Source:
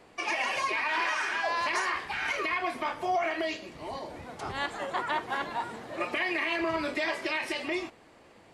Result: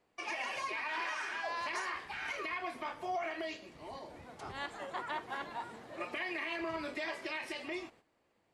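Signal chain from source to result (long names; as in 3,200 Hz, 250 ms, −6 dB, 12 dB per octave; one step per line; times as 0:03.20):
noise gate −51 dBFS, range −11 dB
level −8.5 dB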